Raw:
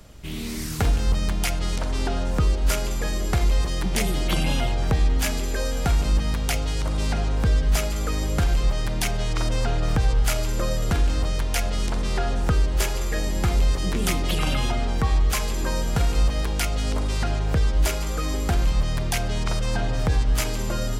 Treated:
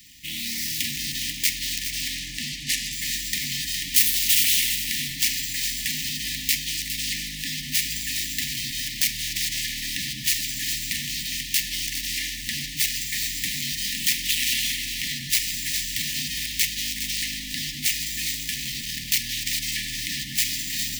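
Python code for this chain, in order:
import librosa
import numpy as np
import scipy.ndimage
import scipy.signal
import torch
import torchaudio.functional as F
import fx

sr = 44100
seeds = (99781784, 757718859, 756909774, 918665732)

p1 = scipy.ndimage.median_filter(x, 5, mode='constant')
p2 = fx.lowpass(p1, sr, hz=7400.0, slope=12, at=(2.15, 2.93))
p3 = fx.high_shelf(p2, sr, hz=5100.0, db=9.5, at=(3.94, 4.78))
p4 = 10.0 ** (-22.0 / 20.0) * (np.abs((p3 / 10.0 ** (-22.0 / 20.0) + 3.0) % 4.0 - 2.0) - 1.0)
p5 = fx.brickwall_bandstop(p4, sr, low_hz=310.0, high_hz=1700.0)
p6 = fx.tilt_eq(p5, sr, slope=4.5)
p7 = p6 + fx.echo_single(p6, sr, ms=410, db=-9.5, dry=0)
p8 = fx.transformer_sat(p7, sr, knee_hz=1200.0, at=(18.31, 19.08))
y = p8 * librosa.db_to_amplitude(1.5)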